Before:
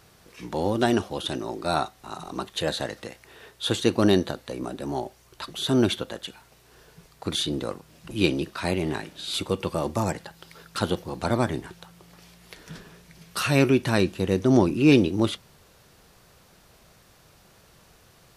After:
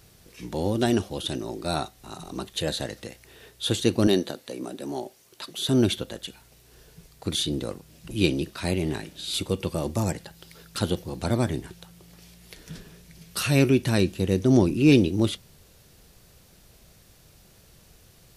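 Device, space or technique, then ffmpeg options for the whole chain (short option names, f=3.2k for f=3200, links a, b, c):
smiley-face EQ: -filter_complex "[0:a]lowshelf=f=87:g=7,equalizer=f=1.1k:t=o:w=1.5:g=-7,highshelf=f=7.9k:g=5,asettb=1/sr,asplit=3[a][b][c];[a]atrim=end=4.074[d];[b]atrim=start=4.07:end=5.69,asetpts=PTS-STARTPTS,afade=t=in:d=0.004:c=qsin,afade=t=out:st=1.616:d=0.004:c=qsin,highpass=220[e];[c]atrim=start=5.686[f];[d][e]acrossfade=d=0.004:c1=hsin:c2=qsin[g];[g][f]acrossfade=d=0.004:c1=qsin:c2=hsin"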